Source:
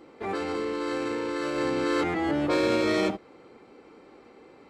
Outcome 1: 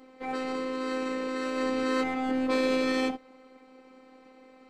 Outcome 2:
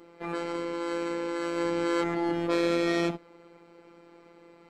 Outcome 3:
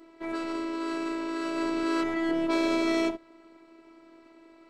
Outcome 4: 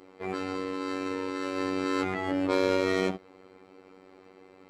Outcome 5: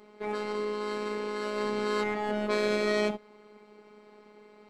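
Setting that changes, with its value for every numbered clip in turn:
robotiser, frequency: 260, 170, 330, 94, 210 Hz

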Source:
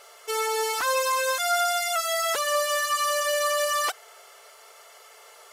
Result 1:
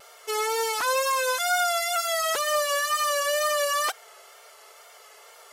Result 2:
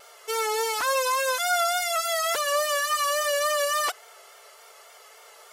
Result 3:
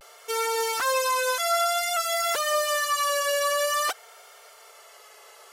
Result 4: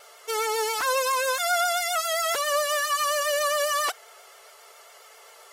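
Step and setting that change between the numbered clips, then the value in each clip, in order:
vibrato, rate: 2.1, 3.5, 0.53, 7.4 Hz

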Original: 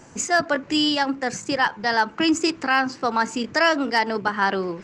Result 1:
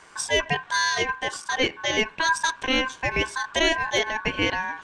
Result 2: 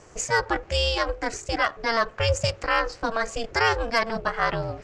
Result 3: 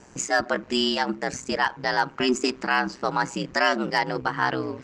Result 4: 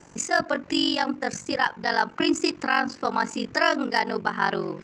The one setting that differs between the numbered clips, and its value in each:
ring modulator, frequency: 1300, 230, 63, 23 Hz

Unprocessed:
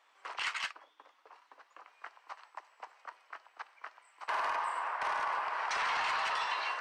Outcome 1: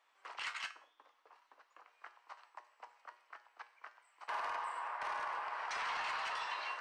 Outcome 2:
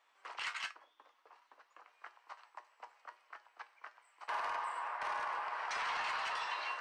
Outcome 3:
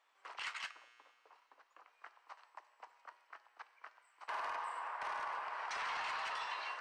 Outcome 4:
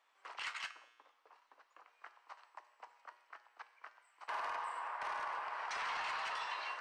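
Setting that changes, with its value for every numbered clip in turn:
resonator, decay: 0.45, 0.2, 2, 0.95 s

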